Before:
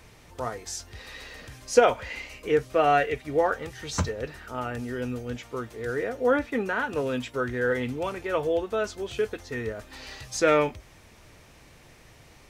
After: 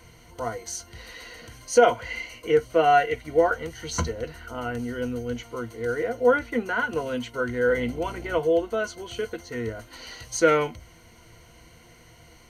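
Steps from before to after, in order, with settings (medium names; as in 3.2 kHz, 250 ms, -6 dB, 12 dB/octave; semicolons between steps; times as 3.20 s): rippled EQ curve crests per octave 1.9, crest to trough 13 dB; 7.67–8.38 s: mains buzz 60 Hz, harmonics 13, -38 dBFS -5 dB/octave; loudness maximiser +4.5 dB; trim -5.5 dB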